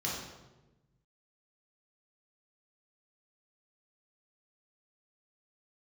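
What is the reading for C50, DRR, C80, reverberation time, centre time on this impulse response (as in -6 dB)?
1.0 dB, -5.5 dB, 3.5 dB, 1.1 s, 63 ms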